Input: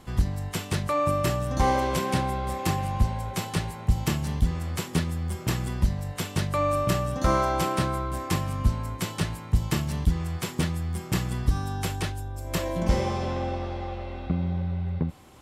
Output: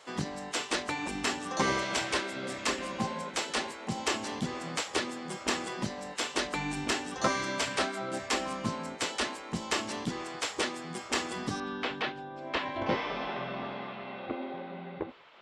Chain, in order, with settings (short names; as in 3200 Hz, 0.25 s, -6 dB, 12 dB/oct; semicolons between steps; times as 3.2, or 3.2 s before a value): LPF 8000 Hz 24 dB/oct, from 11.6 s 3700 Hz; spectral gate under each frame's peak -10 dB weak; HPF 200 Hz 6 dB/oct; gain +3 dB